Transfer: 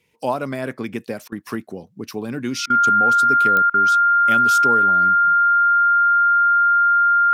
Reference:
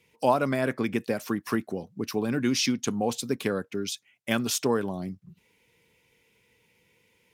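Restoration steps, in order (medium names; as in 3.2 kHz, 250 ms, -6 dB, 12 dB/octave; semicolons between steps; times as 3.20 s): de-click; band-stop 1.4 kHz, Q 30; interpolate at 1.28/2.66/3.70 s, 39 ms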